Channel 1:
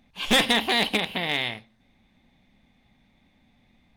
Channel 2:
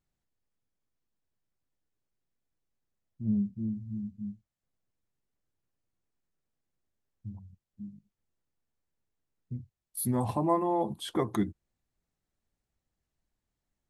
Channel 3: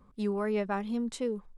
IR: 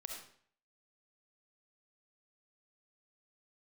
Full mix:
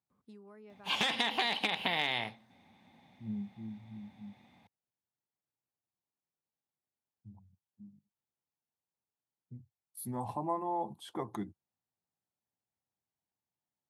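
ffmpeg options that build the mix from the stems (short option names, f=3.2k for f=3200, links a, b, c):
-filter_complex "[0:a]acrossover=split=1200|7300[a][b][c];[a]acompressor=threshold=-35dB:ratio=4[d];[b]acompressor=threshold=-24dB:ratio=4[e];[c]acompressor=threshold=-59dB:ratio=4[f];[d][e][f]amix=inputs=3:normalize=0,adelay=700,volume=-0.5dB[g];[1:a]volume=-10.5dB[h];[2:a]acompressor=threshold=-39dB:ratio=5,adelay=100,volume=-13.5dB[i];[g][h]amix=inputs=2:normalize=0,equalizer=f=850:w=2.2:g=8.5,acompressor=threshold=-27dB:ratio=6,volume=0dB[j];[i][j]amix=inputs=2:normalize=0,highpass=f=93:w=0.5412,highpass=f=93:w=1.3066"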